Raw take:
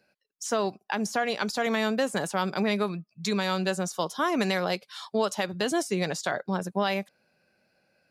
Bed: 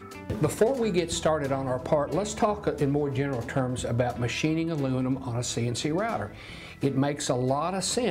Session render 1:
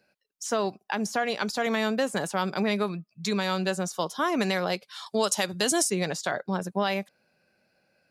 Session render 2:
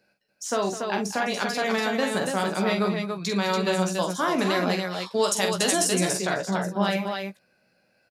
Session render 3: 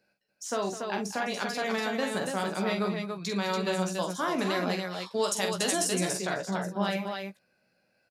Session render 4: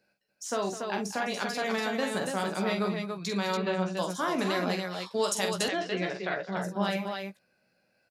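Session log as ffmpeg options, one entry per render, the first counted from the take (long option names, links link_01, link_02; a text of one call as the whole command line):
ffmpeg -i in.wav -filter_complex "[0:a]asettb=1/sr,asplit=3[link_01][link_02][link_03];[link_01]atrim=end=5.064[link_04];[link_02]atrim=start=5.06:end=5.9,asetpts=PTS-STARTPTS,afade=type=in:duration=0.004:curve=qsin,afade=type=out:start_time=0.836:duration=0.004:curve=qsin,equalizer=frequency=9100:width=0.49:gain=12.5[link_05];[link_03]atrim=start=5.896[link_06];[link_04][link_05]acrossfade=duration=0.004:curve1=hsin:curve2=qsin[link_07];[link_07][link_06]acrossfade=duration=0.004:curve1=qsin:curve2=hsin" out.wav
ffmpeg -i in.wav -filter_complex "[0:a]asplit=2[link_01][link_02];[link_02]adelay=16,volume=-7.5dB[link_03];[link_01][link_03]amix=inputs=2:normalize=0,asplit=2[link_04][link_05];[link_05]aecho=0:1:45|207|286:0.473|0.211|0.596[link_06];[link_04][link_06]amix=inputs=2:normalize=0" out.wav
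ffmpeg -i in.wav -af "volume=-5dB" out.wav
ffmpeg -i in.wav -filter_complex "[0:a]asettb=1/sr,asplit=3[link_01][link_02][link_03];[link_01]atrim=end=3.574[link_04];[link_02]atrim=start=3.57:end=3.97,asetpts=PTS-STARTPTS,afade=type=in:duration=0.004:curve=qsin,afade=type=out:start_time=0.396:duration=0.004:curve=qsin,lowpass=3100[link_05];[link_03]atrim=start=3.966[link_06];[link_04][link_05]acrossfade=duration=0.004:curve1=hsin:curve2=qsin[link_07];[link_07][link_06]acrossfade=duration=0.004:curve1=qsin:curve2=hsin,asettb=1/sr,asplit=3[link_08][link_09][link_10];[link_08]atrim=end=5.684[link_11];[link_09]atrim=start=5.68:end=6.57,asetpts=PTS-STARTPTS,afade=type=in:duration=0.004:curve=qsin,afade=type=out:start_time=0.886:duration=0.004:curve=qsin,highpass=180,equalizer=frequency=250:width_type=q:width=4:gain=-8,equalizer=frequency=960:width_type=q:width=4:gain=-4,equalizer=frequency=2000:width_type=q:width=4:gain=4,lowpass=frequency=3600:width=0.5412,lowpass=frequency=3600:width=1.3066[link_12];[link_10]atrim=start=6.566[link_13];[link_11][link_12]acrossfade=duration=0.004:curve1=hsin:curve2=qsin[link_14];[link_14][link_13]acrossfade=duration=0.004:curve1=qsin:curve2=hsin" out.wav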